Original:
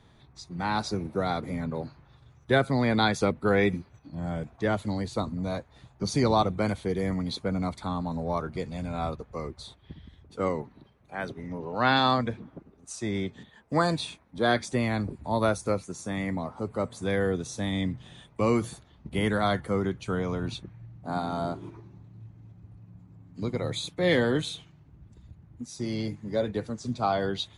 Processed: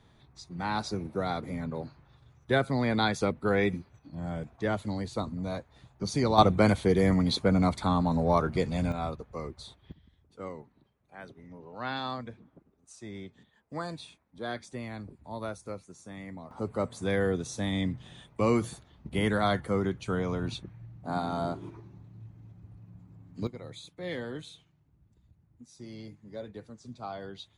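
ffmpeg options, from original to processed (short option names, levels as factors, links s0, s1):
-af "asetnsamples=n=441:p=0,asendcmd='6.38 volume volume 5dB;8.92 volume volume -2.5dB;9.92 volume volume -12dB;16.51 volume volume -1dB;23.47 volume volume -13dB',volume=0.708"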